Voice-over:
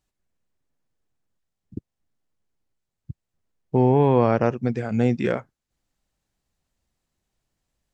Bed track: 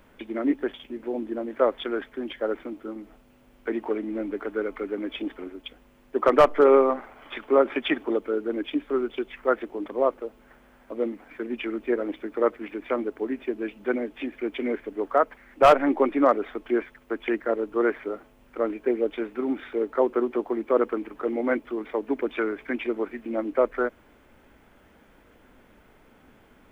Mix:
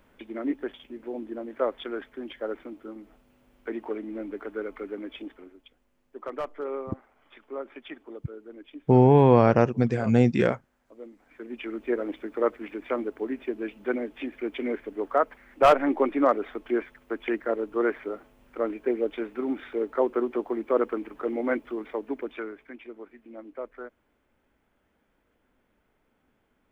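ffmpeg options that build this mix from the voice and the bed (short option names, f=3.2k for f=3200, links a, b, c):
-filter_complex "[0:a]adelay=5150,volume=1dB[a];[1:a]volume=9.5dB,afade=t=out:st=4.92:d=0.79:silence=0.266073,afade=t=in:st=11.14:d=0.78:silence=0.188365,afade=t=out:st=21.7:d=1.03:silence=0.223872[b];[a][b]amix=inputs=2:normalize=0"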